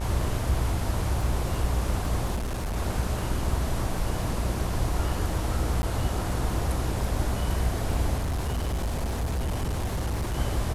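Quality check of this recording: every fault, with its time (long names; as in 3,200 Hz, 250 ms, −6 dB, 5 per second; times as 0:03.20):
mains buzz 60 Hz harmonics 30 −31 dBFS
surface crackle 35 per second −35 dBFS
0:02.35–0:02.77: clipping −26.5 dBFS
0:05.82–0:05.83: drop-out 10 ms
0:08.17–0:10.37: clipping −24.5 dBFS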